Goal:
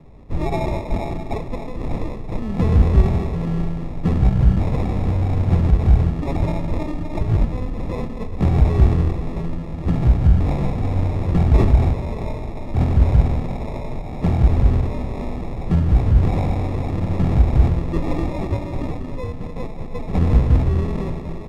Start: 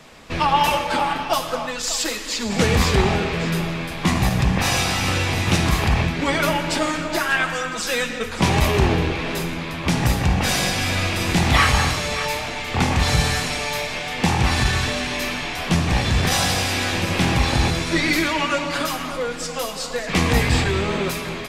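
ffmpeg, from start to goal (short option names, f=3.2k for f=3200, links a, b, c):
-af "acrusher=samples=29:mix=1:aa=0.000001,aemphasis=mode=reproduction:type=riaa,volume=-8.5dB"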